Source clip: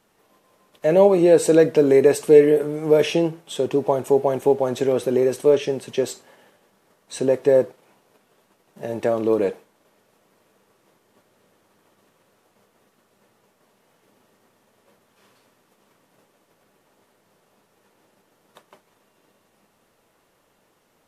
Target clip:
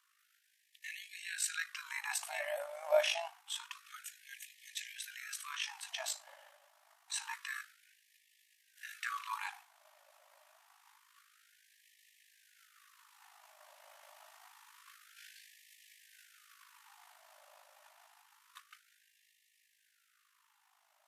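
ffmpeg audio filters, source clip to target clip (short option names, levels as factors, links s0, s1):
-af "tremolo=f=52:d=0.621,dynaudnorm=f=880:g=11:m=6.31,afftfilt=real='re*gte(b*sr/1024,540*pow(1700/540,0.5+0.5*sin(2*PI*0.27*pts/sr)))':imag='im*gte(b*sr/1024,540*pow(1700/540,0.5+0.5*sin(2*PI*0.27*pts/sr)))':win_size=1024:overlap=0.75,volume=0.631"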